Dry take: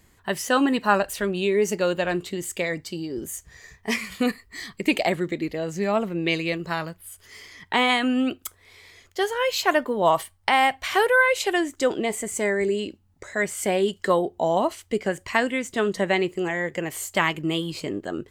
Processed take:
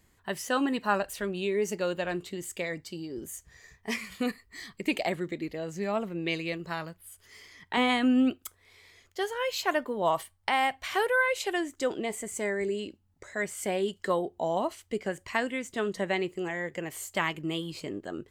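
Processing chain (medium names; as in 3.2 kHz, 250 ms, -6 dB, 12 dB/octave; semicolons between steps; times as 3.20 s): 7.77–8.31 s: bass shelf 340 Hz +10.5 dB; trim -7 dB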